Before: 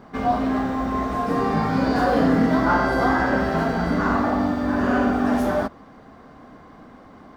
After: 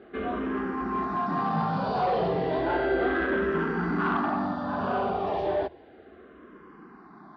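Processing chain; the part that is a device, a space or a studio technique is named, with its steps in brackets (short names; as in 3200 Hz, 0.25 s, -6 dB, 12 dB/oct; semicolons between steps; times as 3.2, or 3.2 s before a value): barber-pole phaser into a guitar amplifier (endless phaser -0.33 Hz; soft clip -18 dBFS, distortion -17 dB; speaker cabinet 87–3800 Hz, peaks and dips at 110 Hz -9 dB, 260 Hz -8 dB, 370 Hz +8 dB, 540 Hz -4 dB, 2100 Hz -5 dB)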